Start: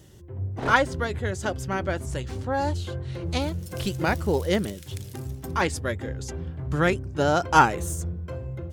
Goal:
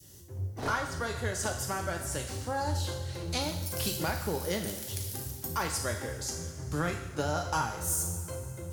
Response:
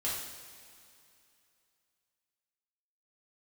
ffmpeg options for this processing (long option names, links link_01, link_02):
-filter_complex "[0:a]adynamicequalizer=threshold=0.0178:dfrequency=940:dqfactor=0.72:tfrequency=940:tqfactor=0.72:attack=5:release=100:ratio=0.375:range=3:mode=boostabove:tftype=bell,acrossover=split=160[link_01][link_02];[link_02]acompressor=threshold=-24dB:ratio=6[link_03];[link_01][link_03]amix=inputs=2:normalize=0,aexciter=amount=1.2:drive=9.4:freq=4500,asplit=2[link_04][link_05];[1:a]atrim=start_sample=2205,highshelf=frequency=2000:gain=11[link_06];[link_05][link_06]afir=irnorm=-1:irlink=0,volume=-8dB[link_07];[link_04][link_07]amix=inputs=2:normalize=0,volume=-8.5dB"